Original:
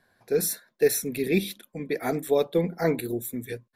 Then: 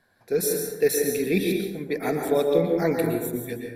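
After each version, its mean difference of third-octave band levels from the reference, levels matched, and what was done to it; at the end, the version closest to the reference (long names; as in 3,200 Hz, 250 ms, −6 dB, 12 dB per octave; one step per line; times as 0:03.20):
7.0 dB: dense smooth reverb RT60 1.2 s, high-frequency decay 0.4×, pre-delay 105 ms, DRR 1.5 dB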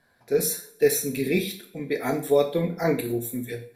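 3.5 dB: coupled-rooms reverb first 0.43 s, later 2 s, from −28 dB, DRR 3 dB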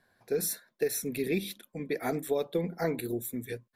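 2.0 dB: downward compressor, threshold −22 dBFS, peak gain reduction 7.5 dB
level −3 dB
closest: third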